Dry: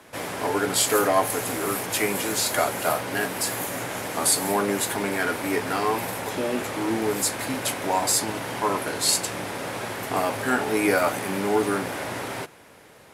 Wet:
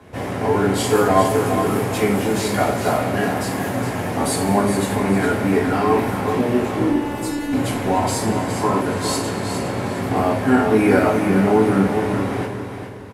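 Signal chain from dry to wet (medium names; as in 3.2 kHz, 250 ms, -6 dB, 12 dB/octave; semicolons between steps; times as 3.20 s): tilt EQ -3 dB/octave; 6.88–7.53 s: robot voice 291 Hz; feedback delay 413 ms, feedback 30%, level -8 dB; reverberation, pre-delay 3 ms, DRR -3 dB; trim -1 dB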